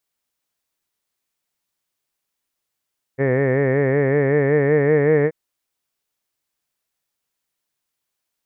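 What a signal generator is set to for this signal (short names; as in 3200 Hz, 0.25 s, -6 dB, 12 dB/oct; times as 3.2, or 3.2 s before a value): formant vowel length 2.13 s, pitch 131 Hz, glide +2.5 st, F1 470 Hz, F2 1800 Hz, F3 2200 Hz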